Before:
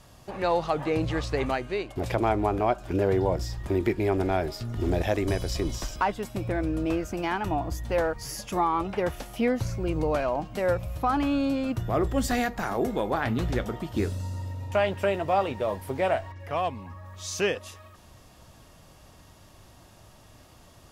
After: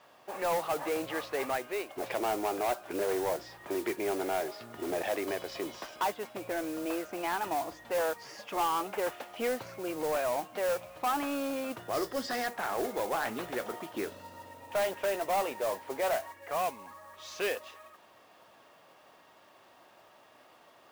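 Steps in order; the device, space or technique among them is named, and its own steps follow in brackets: carbon microphone (band-pass 460–2900 Hz; saturation -24.5 dBFS, distortion -12 dB; modulation noise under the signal 14 dB); 11.93–12.47 s: graphic EQ with 31 bands 800 Hz -5 dB, 2.5 kHz -6 dB, 5 kHz +10 dB

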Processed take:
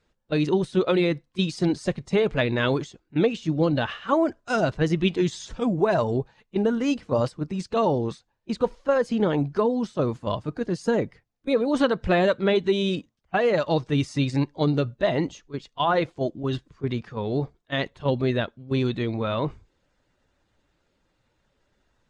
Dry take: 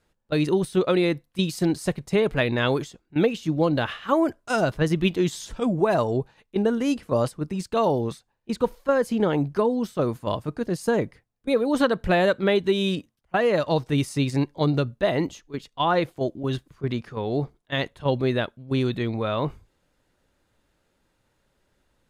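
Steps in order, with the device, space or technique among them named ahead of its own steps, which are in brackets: clip after many re-uploads (low-pass 7.4 kHz 24 dB/octave; coarse spectral quantiser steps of 15 dB)

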